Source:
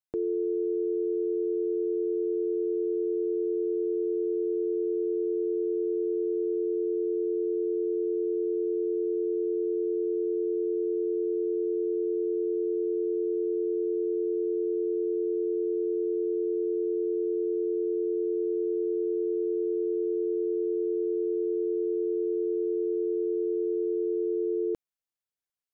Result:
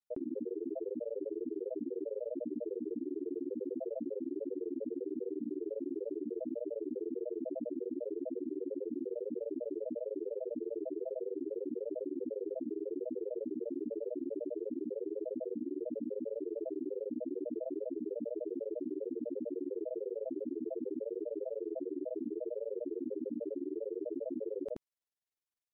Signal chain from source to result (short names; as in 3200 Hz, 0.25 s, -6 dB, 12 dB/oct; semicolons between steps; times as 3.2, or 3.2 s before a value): grains 51 ms, grains 20/s, pitch spread up and down by 7 st; limiter -31 dBFS, peak gain reduction 8.5 dB